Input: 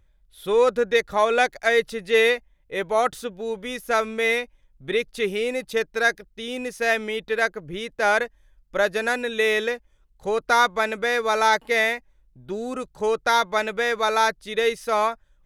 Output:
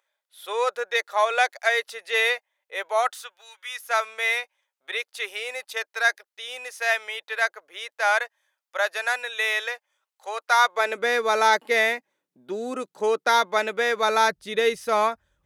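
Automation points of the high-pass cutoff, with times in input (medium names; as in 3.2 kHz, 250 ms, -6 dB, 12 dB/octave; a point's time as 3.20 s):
high-pass 24 dB/octave
2.98 s 600 Hz
3.58 s 1.4 kHz
3.92 s 670 Hz
10.58 s 670 Hz
11.05 s 230 Hz
13.96 s 230 Hz
14.39 s 56 Hz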